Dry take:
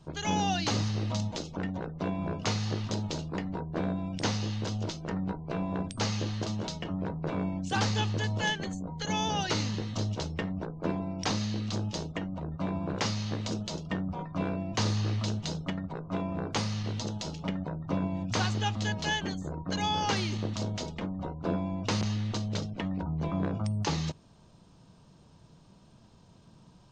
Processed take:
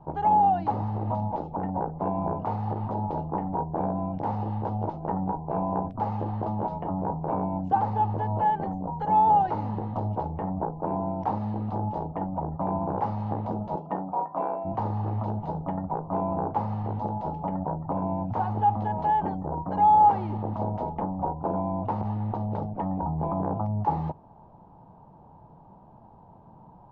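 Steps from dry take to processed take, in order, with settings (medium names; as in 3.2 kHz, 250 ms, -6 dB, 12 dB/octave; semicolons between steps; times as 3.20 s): 13.75–14.64 s: high-pass 180 Hz -> 570 Hz 12 dB/octave; peak limiter -25.5 dBFS, peak gain reduction 10 dB; resonant low-pass 850 Hz, resonance Q 6.7; trim +3 dB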